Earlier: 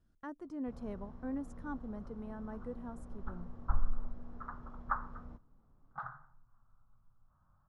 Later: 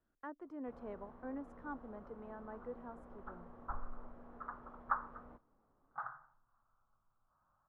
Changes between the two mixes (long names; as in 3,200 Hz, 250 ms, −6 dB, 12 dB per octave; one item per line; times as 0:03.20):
first sound +3.0 dB
master: add three-way crossover with the lows and the highs turned down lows −15 dB, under 310 Hz, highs −19 dB, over 2,800 Hz